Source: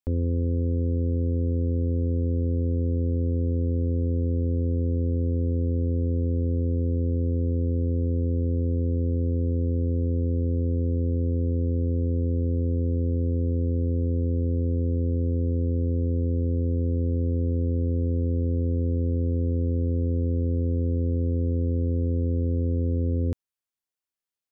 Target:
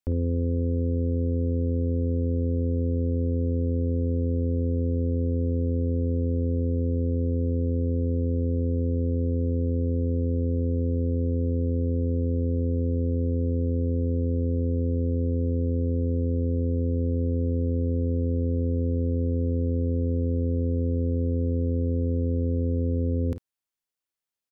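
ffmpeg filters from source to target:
-af "aecho=1:1:33|51:0.126|0.299"

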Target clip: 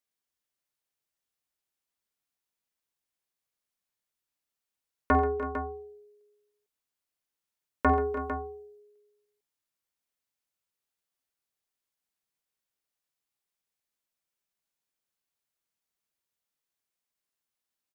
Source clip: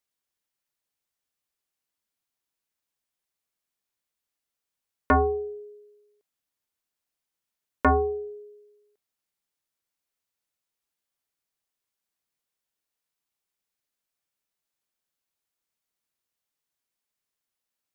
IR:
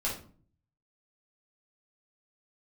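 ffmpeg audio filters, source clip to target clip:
-filter_complex "[0:a]asettb=1/sr,asplit=3[a][b][c];[a]atrim=end=7.934[d];[b]atrim=start=7.93:end=8.34,asetpts=PTS-STARTPTS,afade=t=in:d=0.004:c=qsin,afade=t=out:st=0.406:d=0.004:c=qsin,bass=f=250:g=-1,treble=f=4k:g=9[e];[c]atrim=start=8.336[f];[d][e]acrossfade=d=0.004:c1=hsin:c2=qsin[g];[g][f]acrossfade=d=0.004:c1=qsin:c2=hsin,aecho=1:1:49|89|134|297|327|451:0.266|0.168|0.2|0.178|0.178|0.299,volume=-3.5dB"

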